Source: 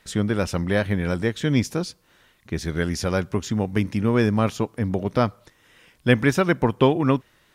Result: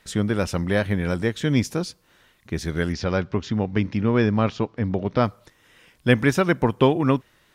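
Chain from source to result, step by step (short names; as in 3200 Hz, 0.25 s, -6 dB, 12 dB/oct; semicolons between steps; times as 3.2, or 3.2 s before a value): 2.92–5.24 LPF 5100 Hz 24 dB/oct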